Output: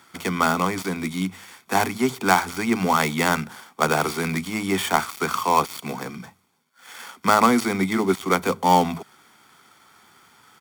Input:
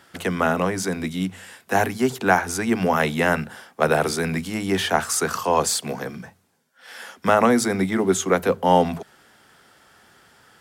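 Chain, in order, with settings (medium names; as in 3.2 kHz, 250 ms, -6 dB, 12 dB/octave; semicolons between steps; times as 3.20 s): dead-time distortion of 0.091 ms; high-pass 240 Hz 6 dB/octave; comb 0.9 ms, depth 53%; trim +1 dB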